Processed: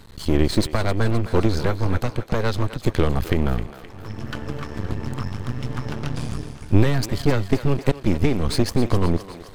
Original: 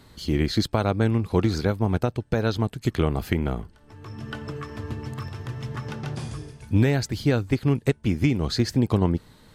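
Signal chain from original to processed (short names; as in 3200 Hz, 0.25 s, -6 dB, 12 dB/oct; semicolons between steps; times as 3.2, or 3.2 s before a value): low shelf 90 Hz +9.5 dB; half-wave rectifier; thinning echo 0.26 s, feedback 62%, high-pass 430 Hz, level -12 dB; gain +6 dB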